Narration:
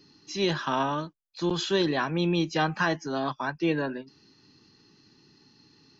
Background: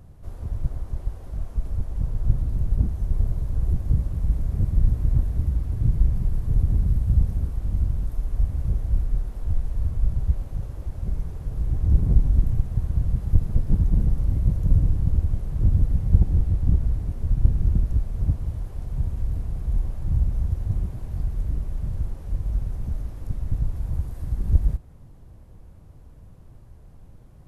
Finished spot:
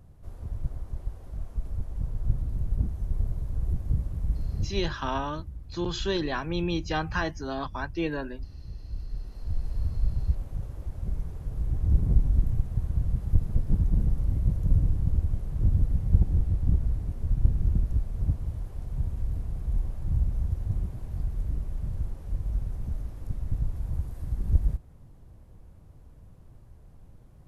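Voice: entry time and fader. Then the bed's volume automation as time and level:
4.35 s, -3.5 dB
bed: 4.58 s -5.5 dB
4.92 s -16.5 dB
8.69 s -16.5 dB
9.7 s -4 dB

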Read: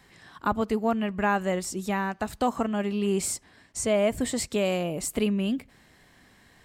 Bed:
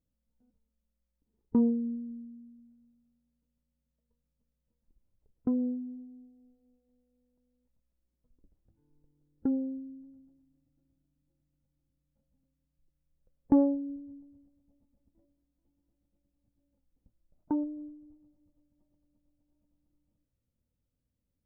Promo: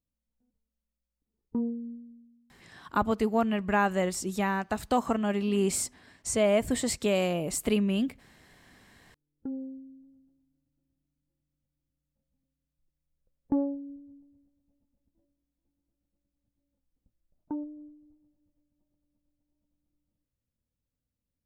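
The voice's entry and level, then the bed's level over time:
2.50 s, -0.5 dB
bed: 1.91 s -5.5 dB
2.78 s -21.5 dB
8.78 s -21.5 dB
9.62 s -4.5 dB

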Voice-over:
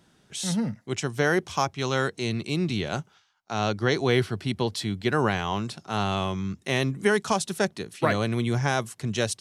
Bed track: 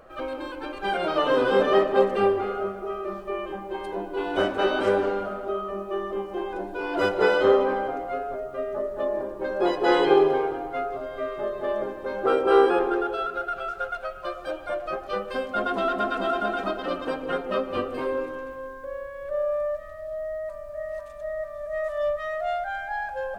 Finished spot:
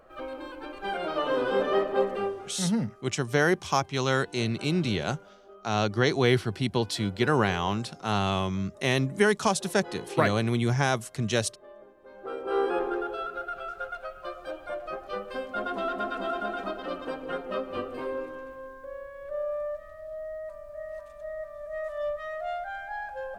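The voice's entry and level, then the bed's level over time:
2.15 s, 0.0 dB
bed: 2.13 s -5.5 dB
2.66 s -22 dB
11.94 s -22 dB
12.77 s -5.5 dB

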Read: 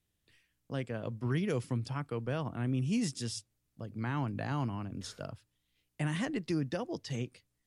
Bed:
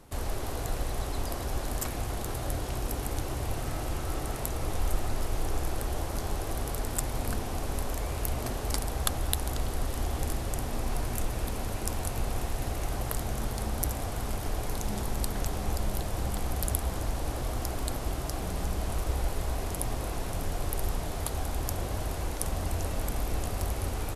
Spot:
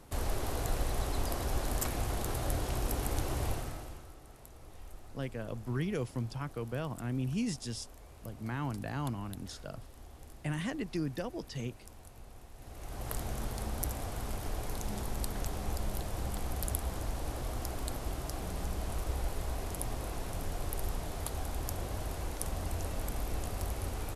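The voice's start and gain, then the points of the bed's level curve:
4.45 s, -2.0 dB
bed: 3.48 s -1 dB
4.16 s -20.5 dB
12.52 s -20.5 dB
13.13 s -5 dB

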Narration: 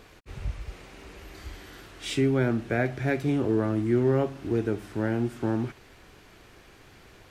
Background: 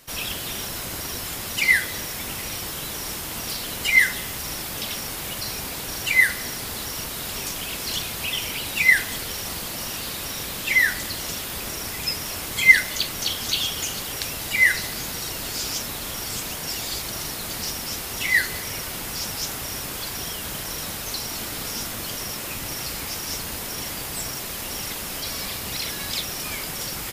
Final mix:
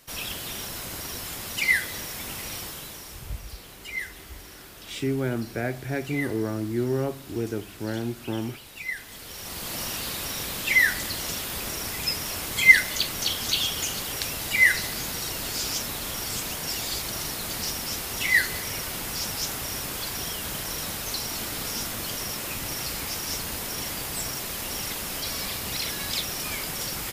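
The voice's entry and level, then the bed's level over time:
2.85 s, -3.0 dB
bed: 2.59 s -4 dB
3.44 s -16.5 dB
8.96 s -16.5 dB
9.74 s -1 dB

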